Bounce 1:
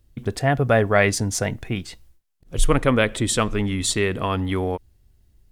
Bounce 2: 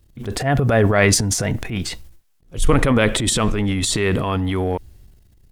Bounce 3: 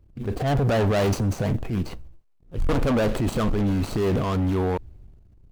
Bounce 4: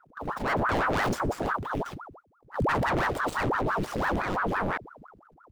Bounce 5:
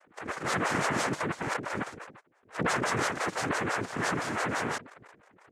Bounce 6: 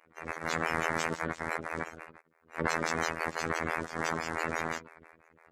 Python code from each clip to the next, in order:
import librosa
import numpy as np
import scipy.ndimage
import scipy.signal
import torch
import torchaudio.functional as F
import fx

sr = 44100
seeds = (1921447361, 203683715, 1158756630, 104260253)

y1 = fx.transient(x, sr, attack_db=-7, sustain_db=10)
y1 = y1 * 10.0 ** (2.5 / 20.0)
y2 = scipy.signal.medfilt(y1, 25)
y2 = np.clip(y2, -10.0 ** (-18.5 / 20.0), 10.0 ** (-18.5 / 20.0))
y3 = fx.ring_lfo(y2, sr, carrier_hz=750.0, swing_pct=90, hz=5.9)
y3 = y3 * 10.0 ** (-2.5 / 20.0)
y4 = fx.noise_vocoder(y3, sr, seeds[0], bands=3)
y4 = y4 * 10.0 ** (-2.5 / 20.0)
y5 = fx.spec_quant(y4, sr, step_db=30)
y5 = fx.robotise(y5, sr, hz=81.7)